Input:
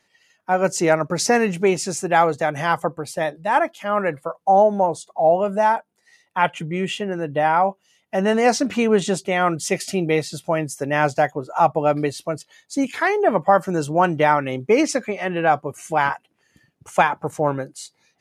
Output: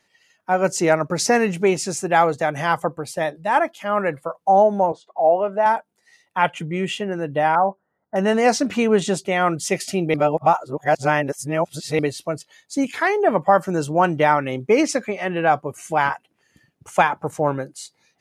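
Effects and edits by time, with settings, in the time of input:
4.92–5.66 s: band-pass 290–2600 Hz
7.55–8.16 s: elliptic low-pass 1.6 kHz
10.14–11.99 s: reverse

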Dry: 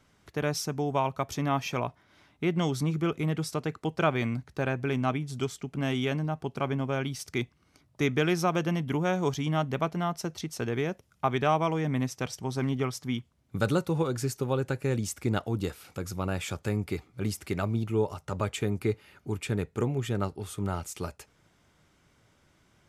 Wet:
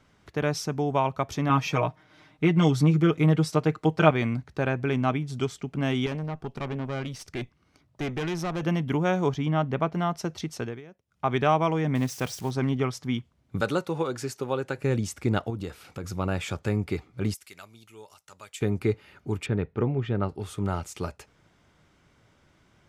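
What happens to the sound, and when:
1.49–4.11 s: comb 6.5 ms, depth 89%
6.06–8.63 s: valve stage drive 29 dB, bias 0.55
9.26–9.94 s: treble shelf 4.4 kHz -11.5 dB
10.54–11.33 s: dip -19.5 dB, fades 0.27 s
11.95–12.51 s: zero-crossing glitches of -33.5 dBFS
13.61–14.78 s: high-pass 360 Hz 6 dB/octave
15.50–16.04 s: compression 2:1, threshold -36 dBFS
17.34–18.61 s: pre-emphasis filter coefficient 0.97
19.46–20.29 s: distance through air 250 m
whole clip: treble shelf 8 kHz -11 dB; trim +3 dB

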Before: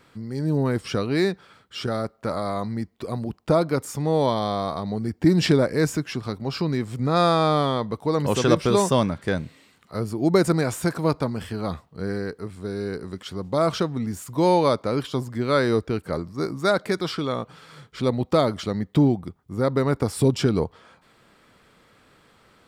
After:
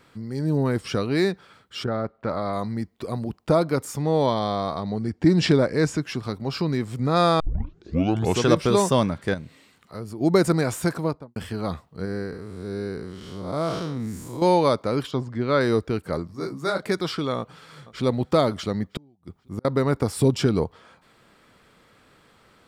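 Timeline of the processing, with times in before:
1.83–2.52 s: low-pass 1.9 kHz -> 4.4 kHz
4.00–6.03 s: low-pass 7.7 kHz
7.40 s: tape start 1.04 s
9.34–10.21 s: compression 1.5:1, threshold -42 dBFS
10.90–11.36 s: studio fade out
12.05–14.42 s: spectral blur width 185 ms
15.11–15.61 s: distance through air 120 m
16.27–16.83 s: detune thickener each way 32 cents
17.38–18.04 s: echo throw 480 ms, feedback 40%, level -17.5 dB
18.88–19.65 s: inverted gate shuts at -18 dBFS, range -37 dB

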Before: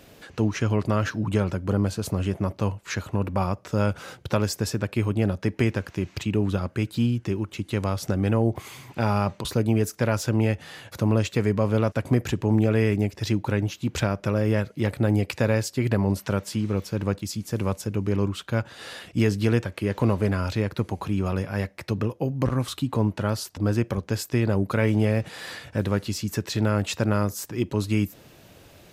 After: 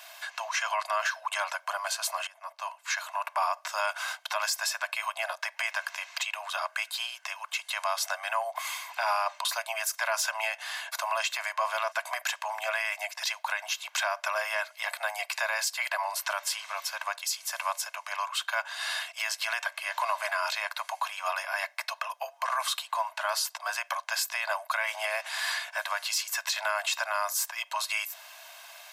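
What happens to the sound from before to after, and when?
2.27–3.34 s: fade in linear, from -20 dB
whole clip: steep high-pass 660 Hz 96 dB/octave; comb 1.9 ms, depth 50%; peak limiter -25 dBFS; trim +6.5 dB

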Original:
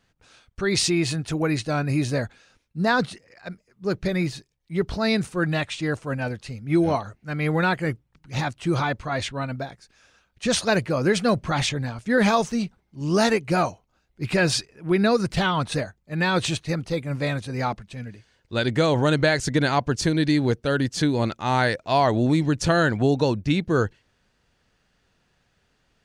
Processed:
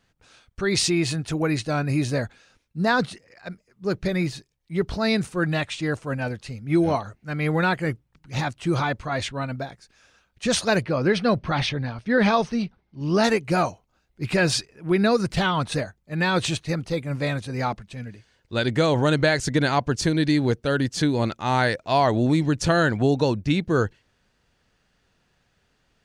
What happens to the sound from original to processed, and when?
10.82–13.24 s: Savitzky-Golay filter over 15 samples

